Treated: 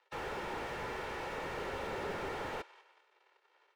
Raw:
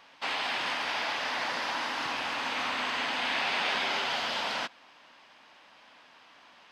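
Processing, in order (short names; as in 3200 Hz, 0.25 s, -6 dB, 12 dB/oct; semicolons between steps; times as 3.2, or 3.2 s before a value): self-modulated delay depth 0.94 ms; on a send: thinning echo 0.36 s, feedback 55%, high-pass 690 Hz, level -22 dB; on the sum: crossover distortion -51.5 dBFS; LPF 2200 Hz 12 dB/oct; comb 2.2 ms, depth 48%; time stretch by phase-locked vocoder 0.56×; steep high-pass 340 Hz 96 dB/oct; slew limiter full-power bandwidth 5.5 Hz; gain +7.5 dB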